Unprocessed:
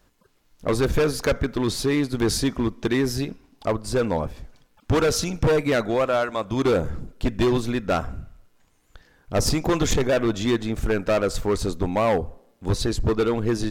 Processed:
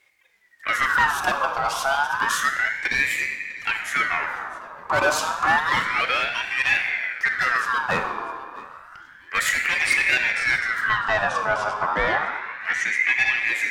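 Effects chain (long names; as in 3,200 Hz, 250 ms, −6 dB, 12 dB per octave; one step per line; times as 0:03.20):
0:10.81–0:13.05: low-pass filter 5,000 Hz 12 dB per octave
feedback echo with a high-pass in the loop 652 ms, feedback 26%, level −20.5 dB
rectangular room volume 3,400 cubic metres, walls mixed, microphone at 1.6 metres
ring modulator whose carrier an LFO sweeps 1,600 Hz, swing 35%, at 0.3 Hz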